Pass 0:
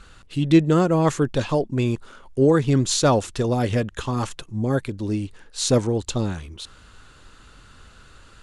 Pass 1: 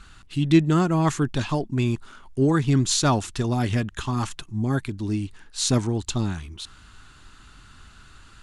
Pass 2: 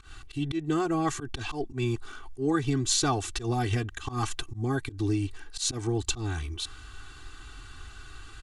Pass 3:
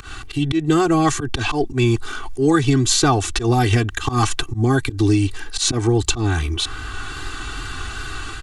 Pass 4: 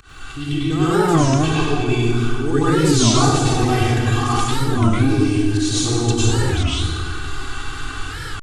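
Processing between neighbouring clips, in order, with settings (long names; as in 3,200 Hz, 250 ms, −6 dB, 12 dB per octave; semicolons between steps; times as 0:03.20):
parametric band 510 Hz −13.5 dB 0.5 octaves
downward compressor 4 to 1, threshold −25 dBFS, peak gain reduction 12 dB; volume swells 110 ms; comb filter 2.6 ms, depth 92%
automatic gain control gain up to 6 dB; tape wow and flutter 23 cents; multiband upward and downward compressor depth 40%; level +5.5 dB
delay with a low-pass on its return 178 ms, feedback 52%, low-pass 670 Hz, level −4 dB; dense smooth reverb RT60 1.5 s, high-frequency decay 0.9×, pre-delay 85 ms, DRR −9.5 dB; wow of a warped record 33 1/3 rpm, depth 250 cents; level −9.5 dB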